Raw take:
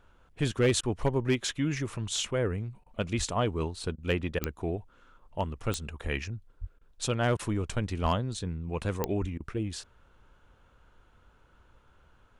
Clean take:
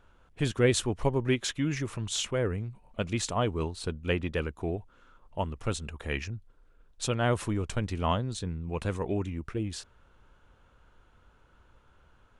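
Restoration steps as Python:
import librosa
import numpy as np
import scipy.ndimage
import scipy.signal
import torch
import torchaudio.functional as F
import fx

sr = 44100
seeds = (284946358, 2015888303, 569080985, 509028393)

y = fx.fix_declip(x, sr, threshold_db=-18.0)
y = fx.fix_declick_ar(y, sr, threshold=10.0)
y = fx.fix_deplosive(y, sr, at_s=(3.17, 6.03, 6.6, 8.02, 9.2))
y = fx.fix_interpolate(y, sr, at_s=(0.81, 2.84, 3.96, 4.39, 6.79, 7.37, 9.38), length_ms=21.0)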